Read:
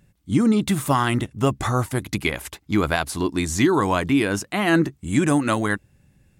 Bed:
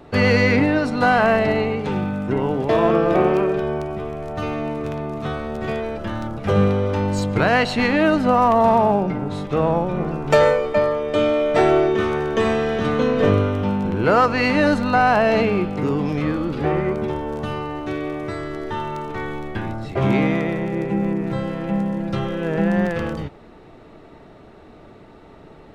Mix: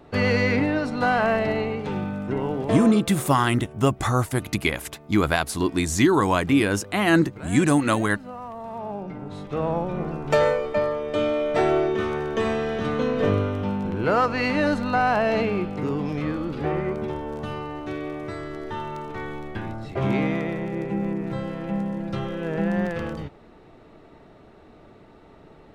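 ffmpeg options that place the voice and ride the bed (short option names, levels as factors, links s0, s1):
-filter_complex "[0:a]adelay=2400,volume=1[s0];[1:a]volume=3.55,afade=t=out:st=2.64:d=0.39:silence=0.158489,afade=t=in:st=8.69:d=1.17:silence=0.158489[s1];[s0][s1]amix=inputs=2:normalize=0"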